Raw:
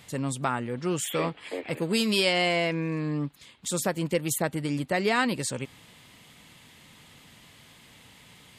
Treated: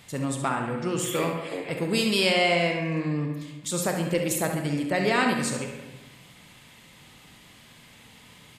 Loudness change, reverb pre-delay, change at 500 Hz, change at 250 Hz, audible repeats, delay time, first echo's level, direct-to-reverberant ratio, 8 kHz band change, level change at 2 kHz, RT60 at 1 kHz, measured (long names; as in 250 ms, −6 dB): +2.0 dB, 26 ms, +2.0 dB, +2.0 dB, 1, 69 ms, −9.0 dB, 2.5 dB, +1.5 dB, +2.5 dB, 1.2 s